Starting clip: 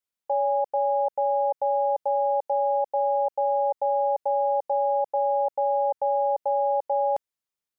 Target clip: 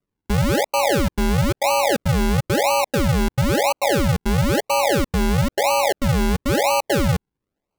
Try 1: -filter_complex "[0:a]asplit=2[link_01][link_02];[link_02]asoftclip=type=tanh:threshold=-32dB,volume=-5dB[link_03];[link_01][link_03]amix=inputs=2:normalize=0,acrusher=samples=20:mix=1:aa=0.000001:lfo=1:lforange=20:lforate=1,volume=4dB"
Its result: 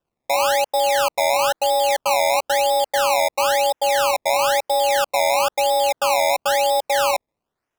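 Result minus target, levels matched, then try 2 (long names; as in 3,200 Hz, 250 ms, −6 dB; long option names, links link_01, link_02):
sample-and-hold swept by an LFO: distortion −32 dB
-filter_complex "[0:a]asplit=2[link_01][link_02];[link_02]asoftclip=type=tanh:threshold=-32dB,volume=-5dB[link_03];[link_01][link_03]amix=inputs=2:normalize=0,acrusher=samples=49:mix=1:aa=0.000001:lfo=1:lforange=49:lforate=1,volume=4dB"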